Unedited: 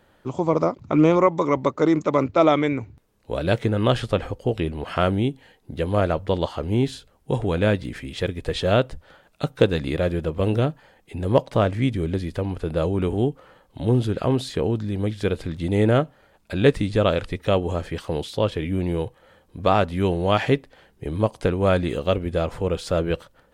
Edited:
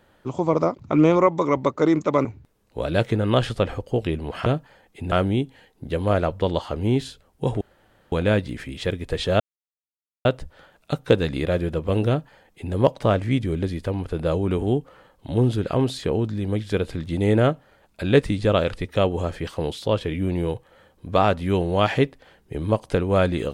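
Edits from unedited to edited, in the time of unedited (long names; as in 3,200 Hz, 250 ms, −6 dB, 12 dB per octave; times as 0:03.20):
0:02.25–0:02.78: remove
0:07.48: splice in room tone 0.51 s
0:08.76: splice in silence 0.85 s
0:10.59–0:11.25: duplicate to 0:04.99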